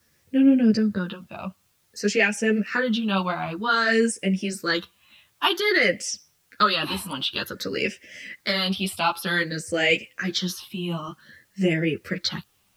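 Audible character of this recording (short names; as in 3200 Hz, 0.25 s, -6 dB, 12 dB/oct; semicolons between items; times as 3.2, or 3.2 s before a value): phasing stages 6, 0.53 Hz, lowest notch 470–1100 Hz; a quantiser's noise floor 12-bit, dither triangular; a shimmering, thickened sound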